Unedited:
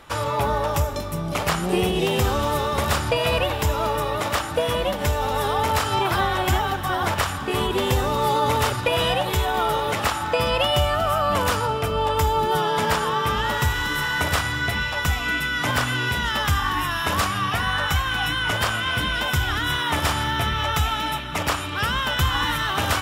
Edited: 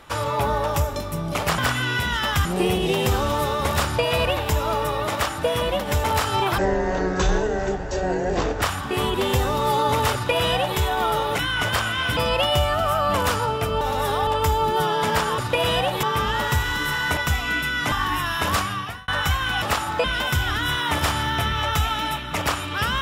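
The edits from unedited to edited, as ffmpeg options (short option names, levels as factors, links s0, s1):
-filter_complex "[0:a]asplit=17[s0][s1][s2][s3][s4][s5][s6][s7][s8][s9][s10][s11][s12][s13][s14][s15][s16];[s0]atrim=end=1.582[s17];[s1]atrim=start=15.698:end=16.572[s18];[s2]atrim=start=1.578:end=5.172[s19];[s3]atrim=start=5.628:end=6.174[s20];[s4]atrim=start=6.17:end=7.19,asetpts=PTS-STARTPTS,asetrate=22050,aresample=44100[s21];[s5]atrim=start=7.186:end=9.962[s22];[s6]atrim=start=18.268:end=19.052[s23];[s7]atrim=start=10.378:end=12.022[s24];[s8]atrim=start=5.168:end=5.632[s25];[s9]atrim=start=12.018:end=13.132[s26];[s10]atrim=start=8.708:end=9.362[s27];[s11]atrim=start=13.128:end=14.272[s28];[s12]atrim=start=14.948:end=15.702[s29];[s13]atrim=start=16.568:end=17.73,asetpts=PTS-STARTPTS,afade=t=out:st=0.672:d=0.49[s30];[s14]atrim=start=17.73:end=18.272,asetpts=PTS-STARTPTS,afade=t=in:d=0.004:c=hsin[s31];[s15]atrim=start=9.958:end=10.382[s32];[s16]atrim=start=19.048[s33];[s17][s18]acrossfade=d=0.004:c1=hsin:c2=hsin[s34];[s34][s19]acrossfade=d=0.004:c1=hsin:c2=hsin[s35];[s35][s20]acrossfade=d=0.004:c1=hsin:c2=hsin[s36];[s36][s21]acrossfade=d=0.004:c1=hsin:c2=hsin[s37];[s37][s22]acrossfade=d=0.004:c1=hsin:c2=hsin[s38];[s38][s23]acrossfade=d=0.004:c1=hsin:c2=hsin[s39];[s39][s24]acrossfade=d=0.004:c1=hsin:c2=hsin[s40];[s40][s25]acrossfade=d=0.004:c1=hsin:c2=hsin[s41];[s41][s26]acrossfade=d=0.004:c1=hsin:c2=hsin[s42];[s42][s27]acrossfade=d=0.004:c1=hsin:c2=hsin[s43];[s43][s28]acrossfade=d=0.004:c1=hsin:c2=hsin[s44];[s44][s29]acrossfade=d=0.004:c1=hsin:c2=hsin[s45];[s30][s31]concat=n=2:v=0:a=1[s46];[s45][s46]acrossfade=d=0.004:c1=hsin:c2=hsin[s47];[s47][s32]acrossfade=d=0.004:c1=hsin:c2=hsin[s48];[s48][s33]acrossfade=d=0.004:c1=hsin:c2=hsin"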